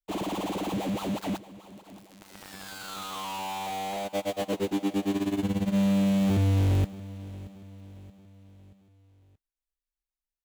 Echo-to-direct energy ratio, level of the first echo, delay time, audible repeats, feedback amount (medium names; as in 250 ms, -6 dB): -17.0 dB, -18.0 dB, 628 ms, 3, 48%